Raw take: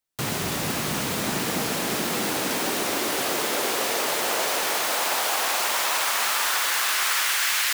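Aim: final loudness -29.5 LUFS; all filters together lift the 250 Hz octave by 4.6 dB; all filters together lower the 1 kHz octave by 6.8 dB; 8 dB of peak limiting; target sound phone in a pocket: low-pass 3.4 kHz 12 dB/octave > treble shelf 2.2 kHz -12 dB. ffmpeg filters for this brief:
-af "equalizer=f=250:t=o:g=6.5,equalizer=f=1000:t=o:g=-6.5,alimiter=limit=0.1:level=0:latency=1,lowpass=3400,highshelf=f=2200:g=-12,volume=1.68"

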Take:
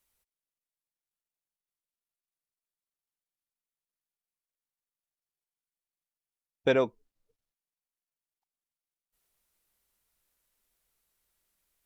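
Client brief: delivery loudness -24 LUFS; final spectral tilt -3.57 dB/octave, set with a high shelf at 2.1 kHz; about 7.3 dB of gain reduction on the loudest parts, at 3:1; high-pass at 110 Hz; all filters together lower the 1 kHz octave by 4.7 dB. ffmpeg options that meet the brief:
-af "highpass=110,equalizer=f=1000:t=o:g=-7.5,highshelf=f=2100:g=5,acompressor=threshold=0.0316:ratio=3,volume=3.98"

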